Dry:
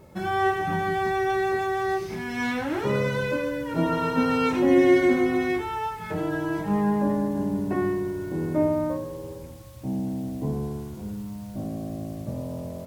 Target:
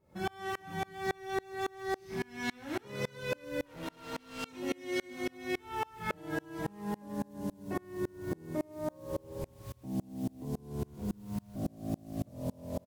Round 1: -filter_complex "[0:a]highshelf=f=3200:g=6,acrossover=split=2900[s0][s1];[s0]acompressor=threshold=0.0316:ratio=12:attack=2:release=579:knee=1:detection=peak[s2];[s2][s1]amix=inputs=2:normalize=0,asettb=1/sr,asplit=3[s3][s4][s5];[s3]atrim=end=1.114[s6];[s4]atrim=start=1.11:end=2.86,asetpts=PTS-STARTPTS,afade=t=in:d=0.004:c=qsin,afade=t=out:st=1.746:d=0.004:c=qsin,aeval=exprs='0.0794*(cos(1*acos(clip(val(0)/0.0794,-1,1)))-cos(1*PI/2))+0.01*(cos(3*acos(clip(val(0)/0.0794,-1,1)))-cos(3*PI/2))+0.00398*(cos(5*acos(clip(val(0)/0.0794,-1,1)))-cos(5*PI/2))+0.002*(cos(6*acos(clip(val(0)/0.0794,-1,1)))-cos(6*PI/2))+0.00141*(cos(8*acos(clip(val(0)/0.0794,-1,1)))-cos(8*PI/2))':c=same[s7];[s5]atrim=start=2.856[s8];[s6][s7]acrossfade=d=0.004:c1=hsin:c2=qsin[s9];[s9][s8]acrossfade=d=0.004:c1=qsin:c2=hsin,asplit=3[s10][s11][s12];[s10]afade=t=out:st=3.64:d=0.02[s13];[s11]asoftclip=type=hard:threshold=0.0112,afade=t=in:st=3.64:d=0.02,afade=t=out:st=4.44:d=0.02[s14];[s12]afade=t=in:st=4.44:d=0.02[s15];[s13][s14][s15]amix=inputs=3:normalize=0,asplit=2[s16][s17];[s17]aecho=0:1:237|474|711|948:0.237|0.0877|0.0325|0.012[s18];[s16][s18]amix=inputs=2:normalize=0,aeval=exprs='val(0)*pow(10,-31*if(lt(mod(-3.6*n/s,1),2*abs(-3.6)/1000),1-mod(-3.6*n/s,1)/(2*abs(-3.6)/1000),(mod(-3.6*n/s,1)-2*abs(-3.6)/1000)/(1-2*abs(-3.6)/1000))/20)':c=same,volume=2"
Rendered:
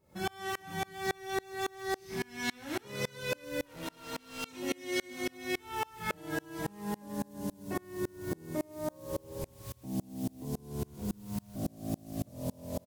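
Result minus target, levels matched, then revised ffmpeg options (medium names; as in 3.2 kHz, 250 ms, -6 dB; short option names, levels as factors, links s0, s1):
8 kHz band +6.0 dB
-filter_complex "[0:a]highshelf=f=3200:g=-2,acrossover=split=2900[s0][s1];[s0]acompressor=threshold=0.0316:ratio=12:attack=2:release=579:knee=1:detection=peak[s2];[s2][s1]amix=inputs=2:normalize=0,asettb=1/sr,asplit=3[s3][s4][s5];[s3]atrim=end=1.114[s6];[s4]atrim=start=1.11:end=2.86,asetpts=PTS-STARTPTS,afade=t=in:d=0.004:c=qsin,afade=t=out:st=1.746:d=0.004:c=qsin,aeval=exprs='0.0794*(cos(1*acos(clip(val(0)/0.0794,-1,1)))-cos(1*PI/2))+0.01*(cos(3*acos(clip(val(0)/0.0794,-1,1)))-cos(3*PI/2))+0.00398*(cos(5*acos(clip(val(0)/0.0794,-1,1)))-cos(5*PI/2))+0.002*(cos(6*acos(clip(val(0)/0.0794,-1,1)))-cos(6*PI/2))+0.00141*(cos(8*acos(clip(val(0)/0.0794,-1,1)))-cos(8*PI/2))':c=same[s7];[s5]atrim=start=2.856[s8];[s6][s7]acrossfade=d=0.004:c1=hsin:c2=qsin[s9];[s9][s8]acrossfade=d=0.004:c1=qsin:c2=hsin,asplit=3[s10][s11][s12];[s10]afade=t=out:st=3.64:d=0.02[s13];[s11]asoftclip=type=hard:threshold=0.0112,afade=t=in:st=3.64:d=0.02,afade=t=out:st=4.44:d=0.02[s14];[s12]afade=t=in:st=4.44:d=0.02[s15];[s13][s14][s15]amix=inputs=3:normalize=0,asplit=2[s16][s17];[s17]aecho=0:1:237|474|711|948:0.237|0.0877|0.0325|0.012[s18];[s16][s18]amix=inputs=2:normalize=0,aeval=exprs='val(0)*pow(10,-31*if(lt(mod(-3.6*n/s,1),2*abs(-3.6)/1000),1-mod(-3.6*n/s,1)/(2*abs(-3.6)/1000),(mod(-3.6*n/s,1)-2*abs(-3.6)/1000)/(1-2*abs(-3.6)/1000))/20)':c=same,volume=2"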